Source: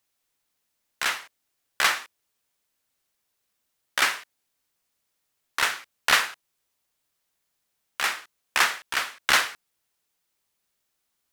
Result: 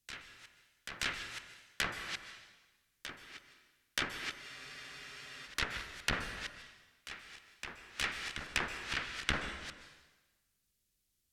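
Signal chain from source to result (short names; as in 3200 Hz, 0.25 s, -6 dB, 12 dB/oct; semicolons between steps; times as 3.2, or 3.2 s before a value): reverse delay 0.154 s, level -10.5 dB; treble ducked by the level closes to 1100 Hz, closed at -19 dBFS; passive tone stack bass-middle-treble 10-0-1; reverse echo 0.927 s -11 dB; plate-style reverb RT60 1.2 s, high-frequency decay 0.95×, pre-delay 0.115 s, DRR 9 dB; spectral freeze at 4.43, 1.03 s; gain +17.5 dB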